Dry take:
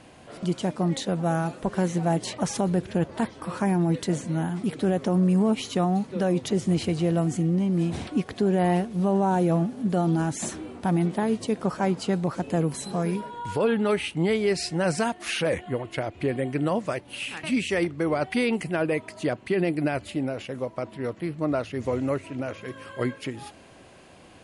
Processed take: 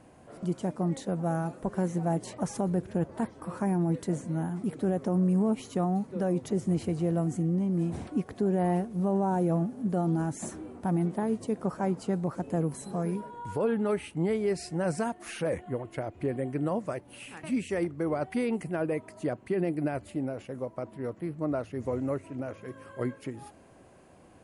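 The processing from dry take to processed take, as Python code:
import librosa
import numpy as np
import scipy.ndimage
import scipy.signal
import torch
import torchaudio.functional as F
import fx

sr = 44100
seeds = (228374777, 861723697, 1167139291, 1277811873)

y = fx.peak_eq(x, sr, hz=3500.0, db=-11.5, octaves=1.8)
y = y * librosa.db_to_amplitude(-4.0)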